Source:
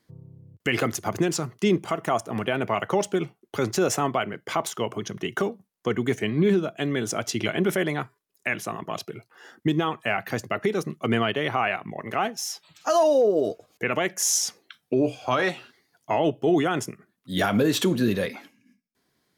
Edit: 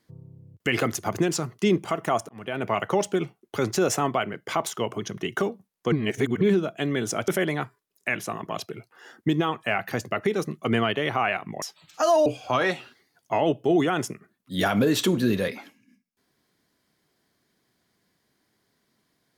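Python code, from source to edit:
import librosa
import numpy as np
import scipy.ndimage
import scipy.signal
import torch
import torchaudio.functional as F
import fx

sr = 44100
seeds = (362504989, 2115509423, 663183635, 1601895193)

y = fx.edit(x, sr, fx.fade_in_span(start_s=2.29, length_s=0.42),
    fx.reverse_span(start_s=5.92, length_s=0.49),
    fx.cut(start_s=7.28, length_s=0.39),
    fx.cut(start_s=12.01, length_s=0.48),
    fx.cut(start_s=13.13, length_s=1.91), tone=tone)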